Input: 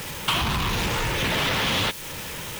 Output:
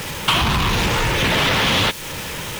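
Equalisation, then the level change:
high-shelf EQ 10,000 Hz −5.5 dB
+6.5 dB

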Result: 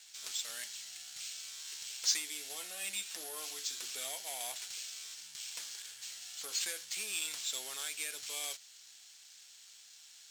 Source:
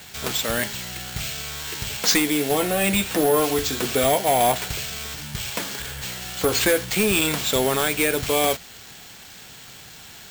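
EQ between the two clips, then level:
resonant band-pass 6,100 Hz, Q 1.2
−8.5 dB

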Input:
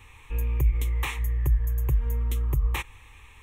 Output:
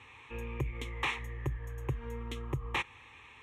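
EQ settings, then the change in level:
band-pass filter 150–4,600 Hz
0.0 dB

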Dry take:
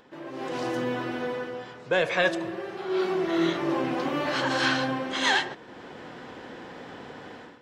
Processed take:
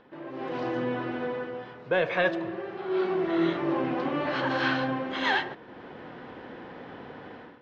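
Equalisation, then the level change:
high-frequency loss of the air 260 metres
0.0 dB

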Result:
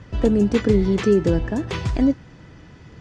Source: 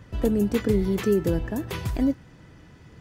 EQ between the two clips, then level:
low-pass filter 7,000 Hz 24 dB per octave
+5.0 dB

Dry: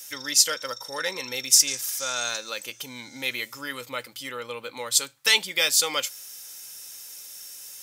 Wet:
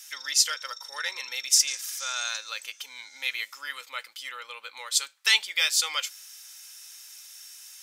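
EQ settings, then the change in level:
high-pass filter 1,200 Hz 12 dB per octave
high-shelf EQ 9,300 Hz −11 dB
0.0 dB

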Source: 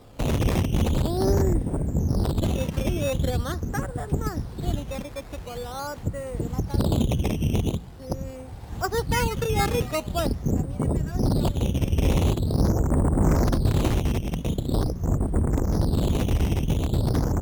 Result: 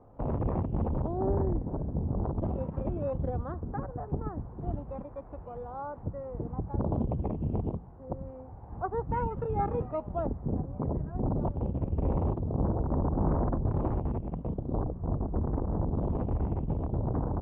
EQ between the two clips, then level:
transistor ladder low-pass 1,200 Hz, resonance 35%
0.0 dB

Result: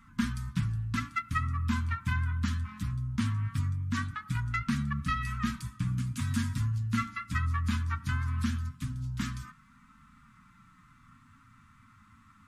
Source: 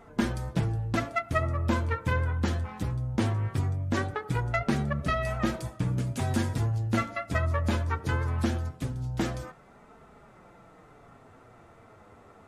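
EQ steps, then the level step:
elliptic band-stop filter 250–1,100 Hz, stop band 40 dB
−1.5 dB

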